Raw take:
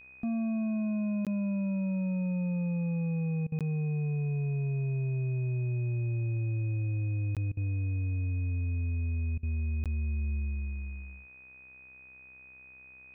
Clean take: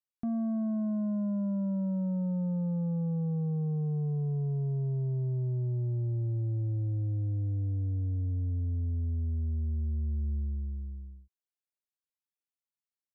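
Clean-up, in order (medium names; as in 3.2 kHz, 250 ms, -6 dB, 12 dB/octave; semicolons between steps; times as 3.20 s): de-hum 64.7 Hz, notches 35; band-stop 2.5 kHz, Q 30; interpolate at 1.25/3.59/7.35/9.84 s, 17 ms; interpolate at 3.47/7.52/9.38 s, 49 ms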